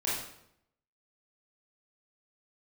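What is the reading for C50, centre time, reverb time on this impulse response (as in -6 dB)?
0.5 dB, 59 ms, 0.75 s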